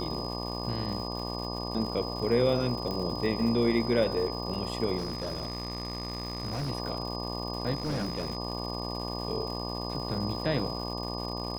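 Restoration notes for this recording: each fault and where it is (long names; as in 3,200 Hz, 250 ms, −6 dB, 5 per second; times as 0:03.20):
mains buzz 60 Hz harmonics 20 −36 dBFS
surface crackle 240 per second −38 dBFS
whistle 5,000 Hz −38 dBFS
0:02.91: click −22 dBFS
0:04.97–0:06.70: clipping −29 dBFS
0:07.74–0:08.37: clipping −27.5 dBFS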